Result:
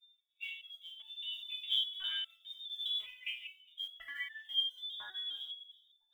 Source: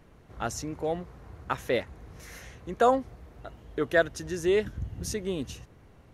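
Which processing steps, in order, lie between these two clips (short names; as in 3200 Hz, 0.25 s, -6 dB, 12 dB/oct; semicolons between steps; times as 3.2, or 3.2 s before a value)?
per-bin expansion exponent 2; hard clip -13 dBFS, distortion -44 dB; thinning echo 0.194 s, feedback 44%, high-pass 910 Hz, level -5.5 dB; low-pass opened by the level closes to 1100 Hz, open at -23.5 dBFS; compressor 12:1, threshold -41 dBFS, peak gain reduction 22.5 dB; tilt +2.5 dB/oct, from 1 s -4 dB/oct, from 2.91 s +2 dB/oct; reverb RT60 0.65 s, pre-delay 4 ms, DRR -6 dB; LFO low-pass saw down 1 Hz 220–2800 Hz; high shelf 2100 Hz +4.5 dB; inverted band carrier 3600 Hz; short-mantissa float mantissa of 4-bit; stepped resonator 4.9 Hz 120–890 Hz; gain +7 dB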